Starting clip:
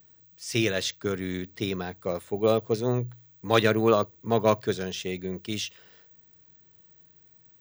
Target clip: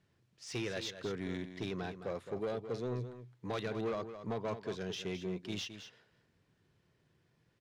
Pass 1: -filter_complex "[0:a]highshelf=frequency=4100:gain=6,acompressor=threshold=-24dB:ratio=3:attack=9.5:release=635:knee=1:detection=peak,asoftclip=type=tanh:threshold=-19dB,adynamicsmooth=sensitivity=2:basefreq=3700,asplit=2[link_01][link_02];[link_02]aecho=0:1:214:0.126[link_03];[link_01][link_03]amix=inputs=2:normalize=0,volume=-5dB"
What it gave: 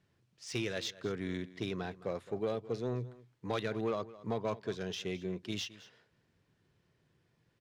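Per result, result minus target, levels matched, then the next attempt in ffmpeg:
echo-to-direct −7.5 dB; soft clipping: distortion −7 dB
-filter_complex "[0:a]highshelf=frequency=4100:gain=6,acompressor=threshold=-24dB:ratio=3:attack=9.5:release=635:knee=1:detection=peak,asoftclip=type=tanh:threshold=-19dB,adynamicsmooth=sensitivity=2:basefreq=3700,asplit=2[link_01][link_02];[link_02]aecho=0:1:214:0.299[link_03];[link_01][link_03]amix=inputs=2:normalize=0,volume=-5dB"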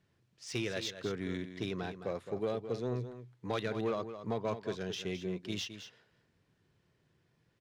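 soft clipping: distortion −7 dB
-filter_complex "[0:a]highshelf=frequency=4100:gain=6,acompressor=threshold=-24dB:ratio=3:attack=9.5:release=635:knee=1:detection=peak,asoftclip=type=tanh:threshold=-25.5dB,adynamicsmooth=sensitivity=2:basefreq=3700,asplit=2[link_01][link_02];[link_02]aecho=0:1:214:0.299[link_03];[link_01][link_03]amix=inputs=2:normalize=0,volume=-5dB"

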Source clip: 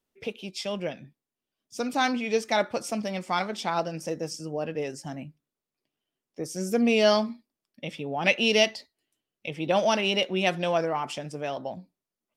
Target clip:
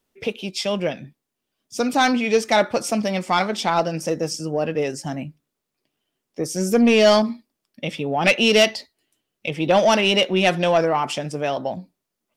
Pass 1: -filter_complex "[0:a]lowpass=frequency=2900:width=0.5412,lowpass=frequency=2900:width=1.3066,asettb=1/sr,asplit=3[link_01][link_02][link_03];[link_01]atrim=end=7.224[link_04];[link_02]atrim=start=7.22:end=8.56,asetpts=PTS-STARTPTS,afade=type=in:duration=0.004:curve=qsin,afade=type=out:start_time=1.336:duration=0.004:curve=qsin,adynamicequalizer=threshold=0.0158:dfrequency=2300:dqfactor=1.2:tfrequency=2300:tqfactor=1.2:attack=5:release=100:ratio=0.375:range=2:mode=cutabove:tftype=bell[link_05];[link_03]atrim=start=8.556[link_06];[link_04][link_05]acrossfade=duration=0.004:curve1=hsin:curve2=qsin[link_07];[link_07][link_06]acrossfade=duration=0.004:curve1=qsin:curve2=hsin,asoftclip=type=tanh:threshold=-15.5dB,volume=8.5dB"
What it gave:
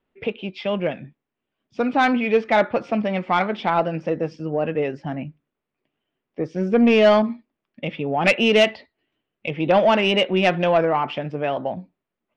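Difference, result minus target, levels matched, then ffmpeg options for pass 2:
4,000 Hz band −3.5 dB
-filter_complex "[0:a]asettb=1/sr,asplit=3[link_01][link_02][link_03];[link_01]atrim=end=7.224[link_04];[link_02]atrim=start=7.22:end=8.56,asetpts=PTS-STARTPTS,afade=type=in:duration=0.004:curve=qsin,afade=type=out:start_time=1.336:duration=0.004:curve=qsin,adynamicequalizer=threshold=0.0158:dfrequency=2300:dqfactor=1.2:tfrequency=2300:tqfactor=1.2:attack=5:release=100:ratio=0.375:range=2:mode=cutabove:tftype=bell[link_05];[link_03]atrim=start=8.556[link_06];[link_04][link_05]acrossfade=duration=0.004:curve1=hsin:curve2=qsin[link_07];[link_07][link_06]acrossfade=duration=0.004:curve1=qsin:curve2=hsin,asoftclip=type=tanh:threshold=-15.5dB,volume=8.5dB"

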